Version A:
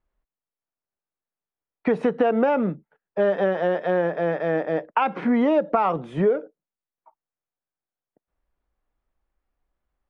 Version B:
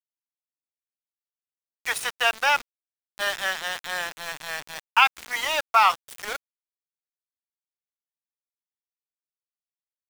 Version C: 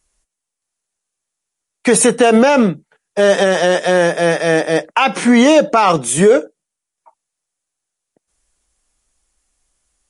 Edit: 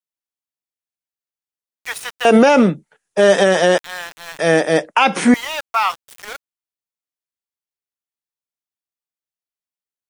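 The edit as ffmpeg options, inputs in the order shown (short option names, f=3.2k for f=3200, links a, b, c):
-filter_complex "[2:a]asplit=2[a][b];[1:a]asplit=3[c][d][e];[c]atrim=end=2.252[f];[a]atrim=start=2.248:end=3.782[g];[d]atrim=start=3.778:end=4.392[h];[b]atrim=start=4.388:end=5.342[i];[e]atrim=start=5.338[j];[f][g]acrossfade=d=0.004:c1=hsin:c2=hsin[k];[k][h]acrossfade=d=0.004:c1=hsin:c2=hsin[l];[l][i]acrossfade=d=0.004:c1=hsin:c2=hsin[m];[m][j]acrossfade=d=0.004:c1=hsin:c2=hsin"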